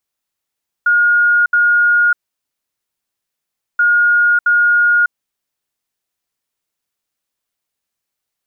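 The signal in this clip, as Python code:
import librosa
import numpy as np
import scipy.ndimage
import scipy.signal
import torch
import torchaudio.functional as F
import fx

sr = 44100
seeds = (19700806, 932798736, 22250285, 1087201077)

y = fx.beep_pattern(sr, wave='sine', hz=1430.0, on_s=0.6, off_s=0.07, beeps=2, pause_s=1.66, groups=2, level_db=-8.5)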